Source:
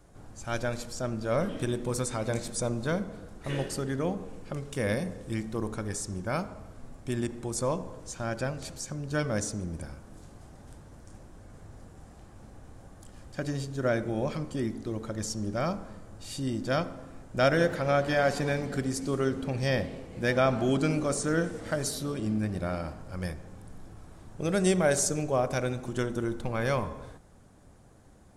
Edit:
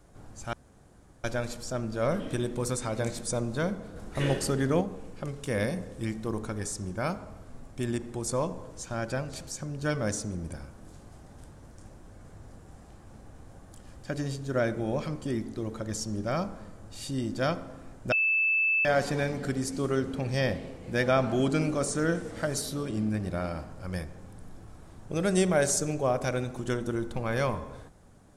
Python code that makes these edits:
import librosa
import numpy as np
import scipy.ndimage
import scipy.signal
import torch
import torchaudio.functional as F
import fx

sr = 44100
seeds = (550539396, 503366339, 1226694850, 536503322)

y = fx.edit(x, sr, fx.insert_room_tone(at_s=0.53, length_s=0.71),
    fx.clip_gain(start_s=3.25, length_s=0.85, db=4.5),
    fx.bleep(start_s=17.41, length_s=0.73, hz=2630.0, db=-22.0), tone=tone)